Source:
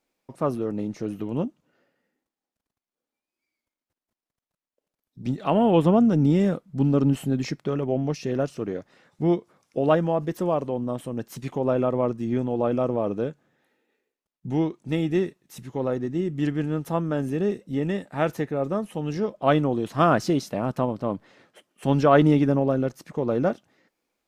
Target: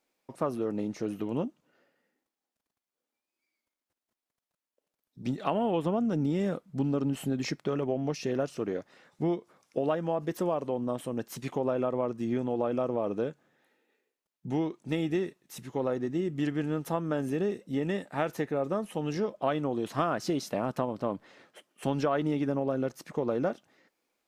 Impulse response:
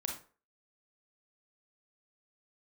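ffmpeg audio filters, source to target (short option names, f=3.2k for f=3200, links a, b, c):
-af "lowshelf=f=160:g=-9.5,acompressor=threshold=-25dB:ratio=6"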